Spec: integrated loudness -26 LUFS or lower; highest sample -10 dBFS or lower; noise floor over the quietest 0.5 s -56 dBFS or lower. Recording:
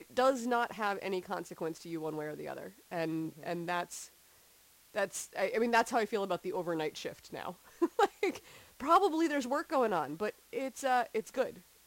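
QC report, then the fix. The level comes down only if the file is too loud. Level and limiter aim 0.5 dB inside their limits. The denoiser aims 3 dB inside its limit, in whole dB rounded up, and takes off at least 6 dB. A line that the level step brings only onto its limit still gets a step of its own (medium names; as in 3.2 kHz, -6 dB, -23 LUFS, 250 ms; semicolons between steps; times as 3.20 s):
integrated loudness -34.0 LUFS: pass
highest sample -16.0 dBFS: pass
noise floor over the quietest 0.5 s -63 dBFS: pass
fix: none needed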